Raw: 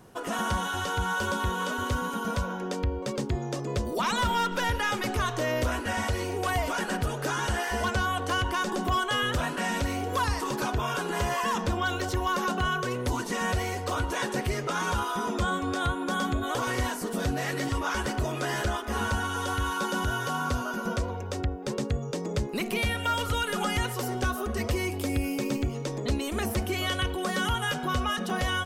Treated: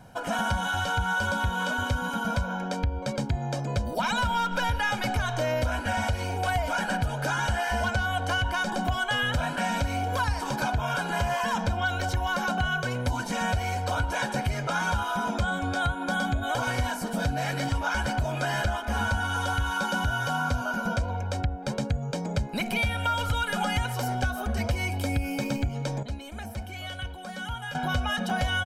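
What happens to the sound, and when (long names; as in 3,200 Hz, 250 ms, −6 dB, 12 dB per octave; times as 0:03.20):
0:26.03–0:27.75: clip gain −11 dB
whole clip: high-shelf EQ 5,800 Hz −6 dB; comb filter 1.3 ms, depth 74%; downward compressor, threshold −24 dBFS; level +1.5 dB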